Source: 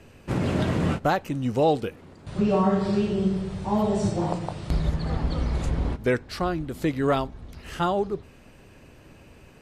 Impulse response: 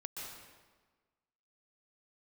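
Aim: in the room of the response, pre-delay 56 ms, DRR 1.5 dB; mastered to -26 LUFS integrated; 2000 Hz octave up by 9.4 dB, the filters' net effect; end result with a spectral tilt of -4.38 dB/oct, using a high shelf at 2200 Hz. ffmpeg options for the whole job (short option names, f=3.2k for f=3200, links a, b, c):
-filter_complex "[0:a]equalizer=f=2k:t=o:g=7.5,highshelf=f=2.2k:g=9,asplit=2[a][b];[1:a]atrim=start_sample=2205,adelay=56[c];[b][c]afir=irnorm=-1:irlink=0,volume=-0.5dB[d];[a][d]amix=inputs=2:normalize=0,volume=-3.5dB"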